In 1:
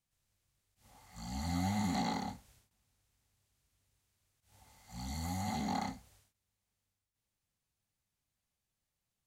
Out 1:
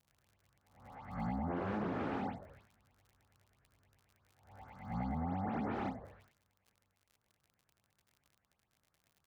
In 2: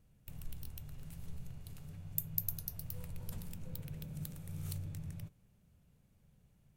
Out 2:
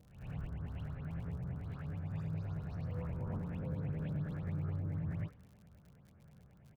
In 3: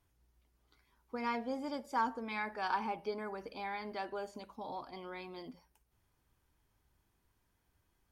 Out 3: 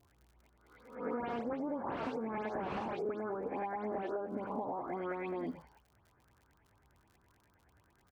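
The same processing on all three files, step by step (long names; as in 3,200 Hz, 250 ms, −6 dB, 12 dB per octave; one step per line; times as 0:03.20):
peak hold with a rise ahead of every peak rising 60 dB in 0.60 s
auto-filter low-pass saw up 9.4 Hz 640–2,200 Hz
echo with shifted repeats 84 ms, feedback 45%, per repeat −95 Hz, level −19.5 dB
wrap-around overflow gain 26.5 dB
treble cut that deepens with the level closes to 1,200 Hz, closed at −35 dBFS
dynamic equaliser 320 Hz, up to +5 dB, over −53 dBFS, Q 1
high-pass filter 63 Hz
notch filter 1,900 Hz, Q 30
all-pass dispersion highs, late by 116 ms, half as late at 3,000 Hz
surface crackle 55 per second −60 dBFS
downward compressor 12 to 1, threshold −40 dBFS
parametric band 900 Hz −2.5 dB
level +6.5 dB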